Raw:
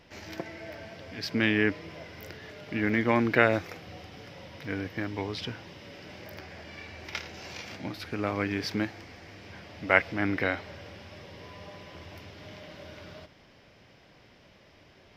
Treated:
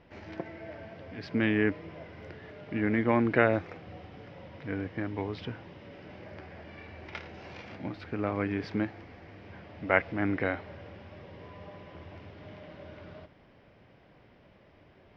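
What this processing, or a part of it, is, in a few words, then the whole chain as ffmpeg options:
phone in a pocket: -af "lowpass=3700,highshelf=frequency=2200:gain=-10"

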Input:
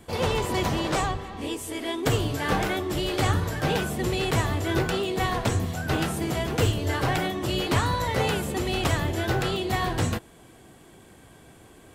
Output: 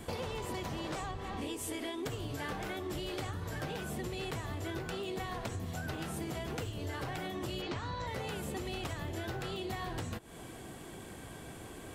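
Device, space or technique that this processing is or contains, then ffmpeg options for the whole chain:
serial compression, peaks first: -filter_complex "[0:a]asplit=3[link_01][link_02][link_03];[link_01]afade=type=out:start_time=7.61:duration=0.02[link_04];[link_02]lowpass=frequency=6400:width=0.5412,lowpass=frequency=6400:width=1.3066,afade=type=in:start_time=7.61:duration=0.02,afade=type=out:start_time=8.06:duration=0.02[link_05];[link_03]afade=type=in:start_time=8.06:duration=0.02[link_06];[link_04][link_05][link_06]amix=inputs=3:normalize=0,acompressor=threshold=-33dB:ratio=6,acompressor=threshold=-42dB:ratio=2.5,volume=3.5dB"

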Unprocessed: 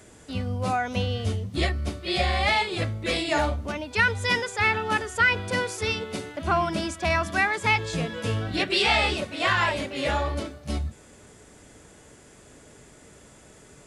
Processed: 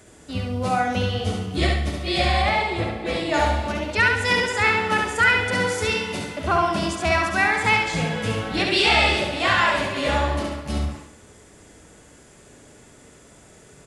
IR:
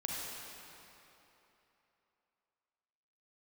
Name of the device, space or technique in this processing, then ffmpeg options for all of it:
keyed gated reverb: -filter_complex "[0:a]asplit=3[link_01][link_02][link_03];[1:a]atrim=start_sample=2205[link_04];[link_02][link_04]afir=irnorm=-1:irlink=0[link_05];[link_03]apad=whole_len=611649[link_06];[link_05][link_06]sidechaingate=range=-33dB:threshold=-42dB:ratio=16:detection=peak,volume=-9.5dB[link_07];[link_01][link_07]amix=inputs=2:normalize=0,asettb=1/sr,asplit=3[link_08][link_09][link_10];[link_08]atrim=end=2.424[link_11];[link_09]atrim=start=2.42:end=3.34,asetpts=PTS-STARTPTS,afade=type=in:duration=0.004:curve=qsin,afade=type=out:start_time=0.916:duration=0.004:curve=qsin,highshelf=frequency=2500:gain=-10.5[link_12];[link_10]atrim=start=3.336[link_13];[link_11][link_12]acrossfade=duration=0.004:curve1=hsin:curve2=qsin[link_14];[link_14][link_13]acrossfade=duration=0.004:curve1=qsin:curve2=hsin,aecho=1:1:69|138|207|276|345:0.668|0.241|0.0866|0.0312|0.0112"

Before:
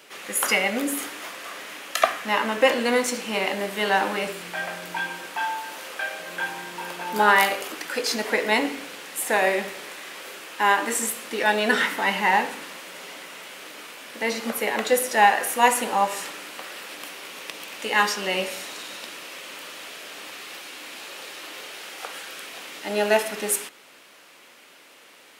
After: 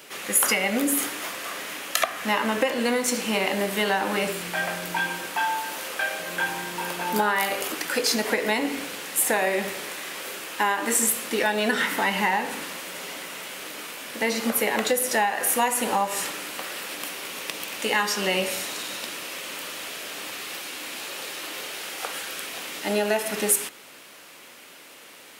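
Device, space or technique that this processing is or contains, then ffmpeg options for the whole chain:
ASMR close-microphone chain: -af "lowshelf=frequency=180:gain=7.5,acompressor=threshold=-22dB:ratio=10,highshelf=frequency=7900:gain=7,volume=2.5dB"

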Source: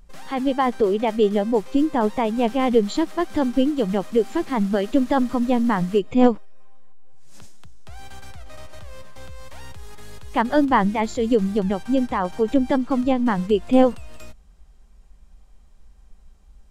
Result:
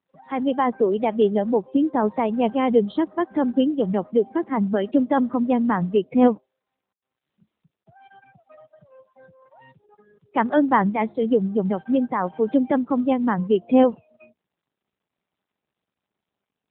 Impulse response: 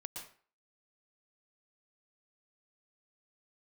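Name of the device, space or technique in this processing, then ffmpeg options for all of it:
mobile call with aggressive noise cancelling: -af "highpass=frequency=140:width=0.5412,highpass=frequency=140:width=1.3066,afftdn=noise_reduction=30:noise_floor=-36" -ar 8000 -c:a libopencore_amrnb -b:a 12200

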